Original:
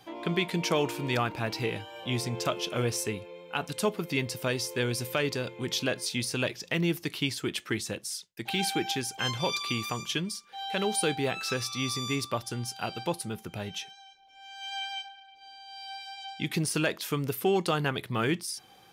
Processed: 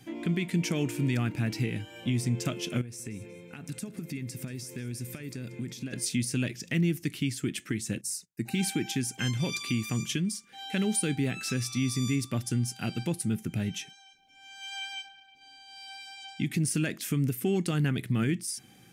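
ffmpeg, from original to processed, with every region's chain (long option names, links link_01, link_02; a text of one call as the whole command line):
ffmpeg -i in.wav -filter_complex "[0:a]asettb=1/sr,asplit=3[link_01][link_02][link_03];[link_01]atrim=end=2.814[link_04];[link_02]atrim=start=2.81:end=5.93,asetpts=PTS-STARTPTS,afade=type=in:duration=0.004:curve=qsin,afade=type=out:start_time=3.116:duration=0.004:curve=qsin,bandreject=frequency=3000:width=8.8,acompressor=threshold=-39dB:ratio=12:attack=3.2:release=140:knee=1:detection=peak,aecho=1:1:184|368|552:0.141|0.0551|0.0215,atrim=end_sample=137592[link_05];[link_03]atrim=start=5.926[link_06];[link_04][link_05]acrossfade=duration=0.004:curve1=hsin:curve2=qsin[link_07];[link_07][link_06]acrossfade=duration=0.004:curve1=qsin:curve2=hsin,asettb=1/sr,asplit=3[link_08][link_09][link_10];[link_08]atrim=end=8.014[link_11];[link_09]atrim=start=8.01:end=8.55,asetpts=PTS-STARTPTS,afade=type=in:duration=0.004:curve=qsin,afade=type=out:start_time=0.536:duration=0.004:curve=qsin,equalizer=frequency=2700:width_type=o:width=1.8:gain=-7.5,agate=range=-11dB:threshold=-58dB:ratio=16:release=100:detection=peak,asuperstop=centerf=3300:order=12:qfactor=5.8[link_12];[link_10]atrim=start=8.546[link_13];[link_11][link_12]acrossfade=duration=0.004:curve1=hsin:curve2=qsin[link_14];[link_14][link_13]acrossfade=duration=0.004:curve1=qsin:curve2=hsin,equalizer=frequency=125:width_type=o:width=1:gain=8,equalizer=frequency=250:width_type=o:width=1:gain=10,equalizer=frequency=500:width_type=o:width=1:gain=-5,equalizer=frequency=1000:width_type=o:width=1:gain=-11,equalizer=frequency=2000:width_type=o:width=1:gain=5,equalizer=frequency=4000:width_type=o:width=1:gain=-6,equalizer=frequency=8000:width_type=o:width=1:gain=7,alimiter=limit=-19dB:level=0:latency=1:release=277" out.wav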